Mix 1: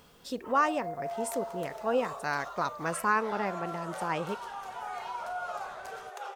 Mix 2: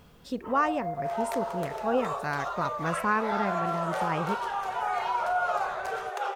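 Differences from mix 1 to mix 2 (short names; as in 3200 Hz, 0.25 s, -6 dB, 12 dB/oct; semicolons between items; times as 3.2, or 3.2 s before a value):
first sound +4.0 dB; second sound +9.0 dB; master: add tone controls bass +8 dB, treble -6 dB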